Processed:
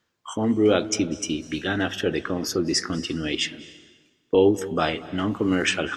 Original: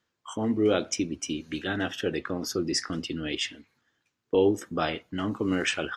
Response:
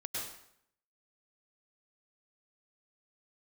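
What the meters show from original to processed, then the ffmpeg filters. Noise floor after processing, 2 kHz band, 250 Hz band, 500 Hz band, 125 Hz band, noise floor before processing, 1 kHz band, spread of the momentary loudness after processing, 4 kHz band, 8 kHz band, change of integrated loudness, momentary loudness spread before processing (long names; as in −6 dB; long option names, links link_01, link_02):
−70 dBFS, +4.5 dB, +4.5 dB, +4.5 dB, +5.0 dB, −80 dBFS, +4.5 dB, 8 LU, +4.5 dB, +4.5 dB, +4.5 dB, 8 LU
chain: -filter_complex "[0:a]asplit=2[link_01][link_02];[1:a]atrim=start_sample=2205,asetrate=22491,aresample=44100,lowshelf=frequency=140:gain=8[link_03];[link_02][link_03]afir=irnorm=-1:irlink=0,volume=-23dB[link_04];[link_01][link_04]amix=inputs=2:normalize=0,volume=4dB"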